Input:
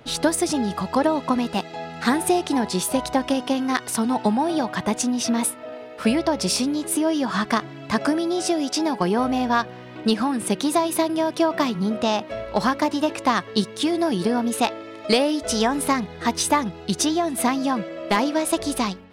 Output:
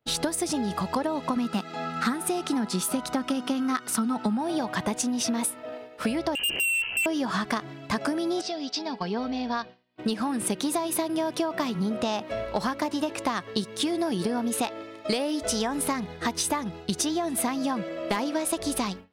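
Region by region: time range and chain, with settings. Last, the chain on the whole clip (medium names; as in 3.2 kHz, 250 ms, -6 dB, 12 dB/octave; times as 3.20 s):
1.36–4.41 s: bass shelf 430 Hz -10.5 dB + small resonant body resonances 210/1300 Hz, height 15 dB, ringing for 30 ms
6.35–7.06 s: resonant low shelf 290 Hz +10 dB, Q 1.5 + frequency inversion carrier 3 kHz + hard clipper -21.5 dBFS
8.41–9.98 s: four-pole ladder low-pass 5.2 kHz, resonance 50% + comb 4.4 ms, depth 49%
whole clip: expander -32 dBFS; treble shelf 9.3 kHz +4.5 dB; compression, threshold -24 dBFS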